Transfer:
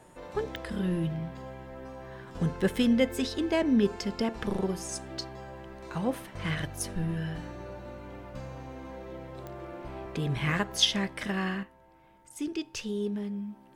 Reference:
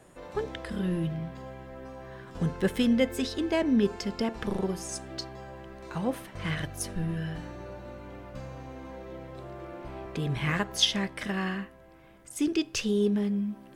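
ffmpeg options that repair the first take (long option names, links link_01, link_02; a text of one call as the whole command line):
ffmpeg -i in.wav -af "adeclick=threshold=4,bandreject=frequency=900:width=30,asetnsamples=nb_out_samples=441:pad=0,asendcmd='11.63 volume volume 6.5dB',volume=0dB" out.wav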